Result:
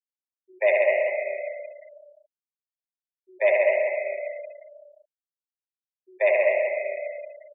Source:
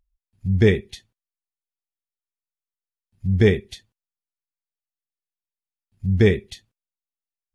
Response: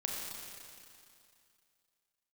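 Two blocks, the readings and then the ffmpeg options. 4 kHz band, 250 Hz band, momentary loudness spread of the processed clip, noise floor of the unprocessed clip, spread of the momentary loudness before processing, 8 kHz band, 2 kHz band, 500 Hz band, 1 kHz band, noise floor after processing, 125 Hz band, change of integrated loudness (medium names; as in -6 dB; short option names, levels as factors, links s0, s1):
under -15 dB, under -25 dB, 18 LU, under -85 dBFS, 13 LU, no reading, +4.5 dB, +3.0 dB, +14.0 dB, under -85 dBFS, under -40 dB, -3.5 dB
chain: -filter_complex "[0:a]highpass=f=420:t=q:w=0.5412,highpass=f=420:t=q:w=1.307,lowpass=f=2600:t=q:w=0.5176,lowpass=f=2600:t=q:w=0.7071,lowpass=f=2600:t=q:w=1.932,afreqshift=180,aecho=1:1:72.89|262.4:0.708|0.355,asplit=2[s0][s1];[1:a]atrim=start_sample=2205,highshelf=f=5300:g=-4,adelay=136[s2];[s1][s2]afir=irnorm=-1:irlink=0,volume=0.794[s3];[s0][s3]amix=inputs=2:normalize=0,afftfilt=real='re*gte(hypot(re,im),0.0251)':imag='im*gte(hypot(re,im),0.0251)':win_size=1024:overlap=0.75"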